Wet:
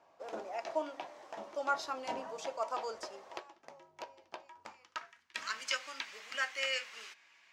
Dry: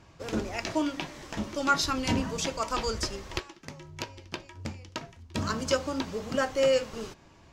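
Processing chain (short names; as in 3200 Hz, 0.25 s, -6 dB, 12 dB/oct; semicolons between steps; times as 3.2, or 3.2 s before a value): hum 50 Hz, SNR 23 dB; RIAA curve recording; band-pass sweep 690 Hz -> 2100 Hz, 4.29–5.46; gain +1 dB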